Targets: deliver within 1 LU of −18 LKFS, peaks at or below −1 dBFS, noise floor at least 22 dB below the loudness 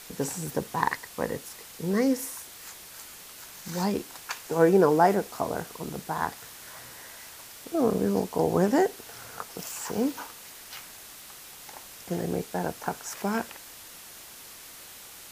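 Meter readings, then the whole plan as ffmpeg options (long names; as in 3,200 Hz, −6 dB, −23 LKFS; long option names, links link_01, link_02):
background noise floor −46 dBFS; target noise floor −50 dBFS; integrated loudness −28.0 LKFS; sample peak −6.5 dBFS; target loudness −18.0 LKFS
→ -af "afftdn=noise_reduction=6:noise_floor=-46"
-af "volume=10dB,alimiter=limit=-1dB:level=0:latency=1"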